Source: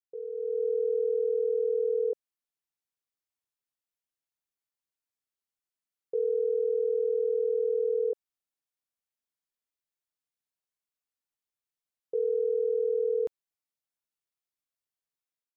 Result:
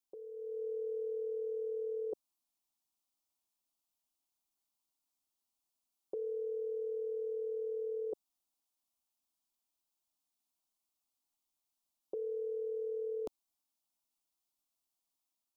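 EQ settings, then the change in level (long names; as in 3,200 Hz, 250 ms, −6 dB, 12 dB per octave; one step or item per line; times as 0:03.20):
phaser with its sweep stopped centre 470 Hz, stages 6
+6.0 dB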